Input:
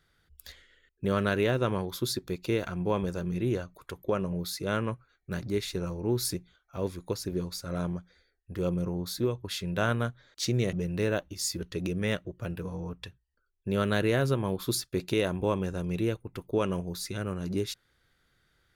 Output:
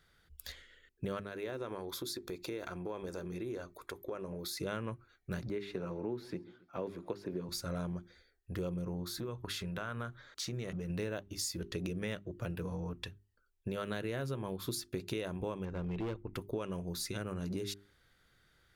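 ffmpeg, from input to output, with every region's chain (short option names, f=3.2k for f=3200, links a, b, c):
-filter_complex "[0:a]asettb=1/sr,asplit=3[a][b][c];[a]atrim=end=1.194[d];[b]atrim=start=1.19:end=4.57,asetpts=PTS-STARTPTS,afade=t=in:d=0.004:c=qsin,afade=t=out:st=3.376:d=0.004:c=qsin,lowshelf=f=240:t=q:w=1.5:g=-6.5,bandreject=f=2.9k:w=8,acompressor=threshold=-39dB:ratio=3:attack=3.2:release=140:knee=1:detection=peak[e];[c]atrim=start=4.566[f];[d][e]acrossfade=d=0.004:c1=hsin:c2=qsin[g];[g][f]acrossfade=d=0.004:c1=qsin:c2=hsin,asettb=1/sr,asplit=3[h][i][j];[h]atrim=end=5.494[k];[i]atrim=start=5.49:end=7.49,asetpts=PTS-STARTPTS,afade=t=in:d=0.004:c=qsin,afade=t=out:st=1.996:d=0.004:c=qsin,acrossover=split=3700[l][m];[m]acompressor=threshold=-47dB:ratio=4:attack=1:release=60[n];[l][n]amix=inputs=2:normalize=0,acrossover=split=160 3100:gain=0.178 1 0.224[o][p][q];[o][p][q]amix=inputs=3:normalize=0,asplit=2[r][s];[s]adelay=136,lowpass=f=4.9k:p=1,volume=-23.5dB,asplit=2[t][u];[u]adelay=136,lowpass=f=4.9k:p=1,volume=0.51,asplit=2[v][w];[w]adelay=136,lowpass=f=4.9k:p=1,volume=0.51[x];[r][t][v][x]amix=inputs=4:normalize=0,atrim=end_sample=88200[y];[j]atrim=start=7.486[z];[k][y]acrossfade=d=0.004:c1=hsin:c2=qsin[aa];[aa][z]acrossfade=d=0.004:c1=qsin:c2=hsin,asettb=1/sr,asplit=3[ab][ac][ad];[ab]atrim=end=9.054[ae];[ac]atrim=start=9.05:end=10.9,asetpts=PTS-STARTPTS,afade=t=in:d=0.004:c=qsin,afade=t=out:st=1.846:d=0.004:c=qsin,equalizer=f=1.3k:w=1.6:g=7,acompressor=threshold=-36dB:ratio=5:attack=3.2:release=140:knee=1:detection=peak[af];[ad]atrim=start=10.896[ag];[ae][af]acrossfade=d=0.004:c1=hsin:c2=qsin[ah];[ah][ag]acrossfade=d=0.004:c1=qsin:c2=hsin,asettb=1/sr,asplit=3[ai][aj][ak];[ai]atrim=end=15.654[al];[aj]atrim=start=15.65:end=16.34,asetpts=PTS-STARTPTS,afade=t=in:d=0.004:c=qsin,afade=t=out:st=0.686:d=0.004:c=qsin,lowpass=2.6k,asubboost=boost=11.5:cutoff=52,asoftclip=type=hard:threshold=-28dB[am];[ak]atrim=start=16.336[an];[al][am]acrossfade=d=0.004:c1=hsin:c2=qsin[ao];[ao][an]acrossfade=d=0.004:c1=qsin:c2=hsin,bandreject=f=50:t=h:w=6,bandreject=f=100:t=h:w=6,bandreject=f=150:t=h:w=6,bandreject=f=200:t=h:w=6,bandreject=f=250:t=h:w=6,bandreject=f=300:t=h:w=6,bandreject=f=350:t=h:w=6,bandreject=f=400:t=h:w=6,acompressor=threshold=-36dB:ratio=6,volume=1dB"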